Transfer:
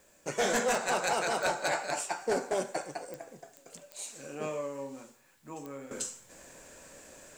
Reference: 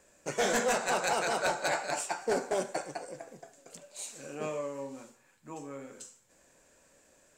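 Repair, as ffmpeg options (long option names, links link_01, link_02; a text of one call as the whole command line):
ffmpeg -i in.wav -af "adeclick=threshold=4,agate=range=-21dB:threshold=-51dB,asetnsamples=nb_out_samples=441:pad=0,asendcmd='5.91 volume volume -11.5dB',volume=0dB" out.wav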